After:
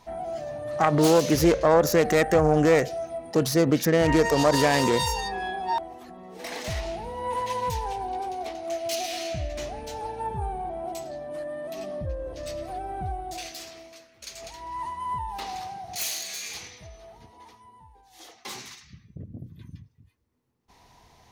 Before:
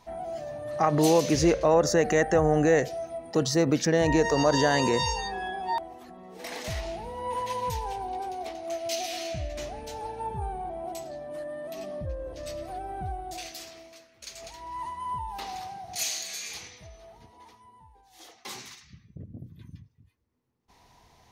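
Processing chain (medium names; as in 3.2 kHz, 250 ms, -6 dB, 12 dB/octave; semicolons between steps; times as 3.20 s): self-modulated delay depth 0.15 ms; trim +2.5 dB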